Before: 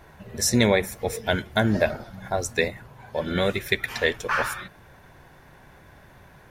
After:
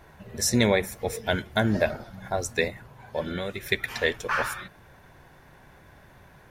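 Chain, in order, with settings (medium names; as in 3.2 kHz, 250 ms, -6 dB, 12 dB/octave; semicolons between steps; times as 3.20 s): 3.21–3.63 s: compression 4:1, threshold -27 dBFS, peak gain reduction 8 dB; trim -2 dB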